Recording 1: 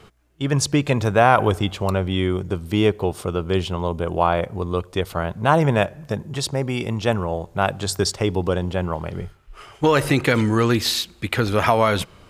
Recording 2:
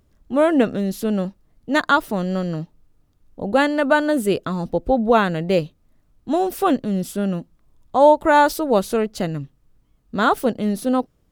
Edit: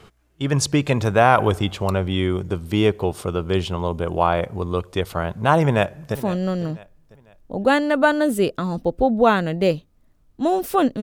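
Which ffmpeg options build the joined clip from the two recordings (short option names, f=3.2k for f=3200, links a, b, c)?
-filter_complex "[0:a]apad=whole_dur=11.02,atrim=end=11.02,atrim=end=6.152[a];[1:a]atrim=start=2.028:end=6.9[b];[a][b]acrossfade=d=0.004:c1=hsin:c2=hsin,asplit=2[c][d];[d]afade=t=in:st=5.64:d=0.01,afade=t=out:st=6.15:d=0.01,aecho=0:1:500|1000|1500:0.158489|0.0554713|0.0194149[e];[c][e]amix=inputs=2:normalize=0"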